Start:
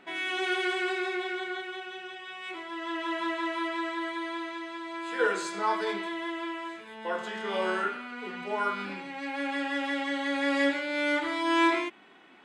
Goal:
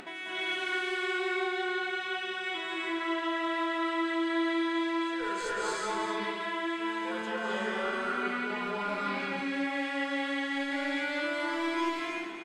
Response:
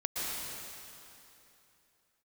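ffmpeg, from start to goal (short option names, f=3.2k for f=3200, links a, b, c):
-filter_complex "[0:a]aeval=exprs='clip(val(0),-1,0.0668)':c=same,areverse,acompressor=threshold=-38dB:ratio=6,areverse,aecho=1:1:248:0.376[a];[1:a]atrim=start_sample=2205,afade=t=out:st=0.3:d=0.01,atrim=end_sample=13671,asetrate=26460,aresample=44100[b];[a][b]afir=irnorm=-1:irlink=0,acompressor=mode=upward:threshold=-39dB:ratio=2.5"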